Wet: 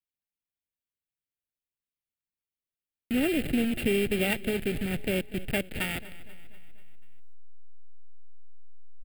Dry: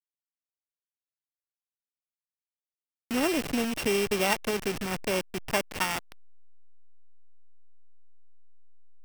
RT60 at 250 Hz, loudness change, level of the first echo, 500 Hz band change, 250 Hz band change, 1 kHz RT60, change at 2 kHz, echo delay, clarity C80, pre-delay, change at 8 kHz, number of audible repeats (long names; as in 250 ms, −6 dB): no reverb audible, 0.0 dB, −18.0 dB, −0.5 dB, +3.0 dB, no reverb audible, −1.0 dB, 243 ms, no reverb audible, no reverb audible, −6.5 dB, 4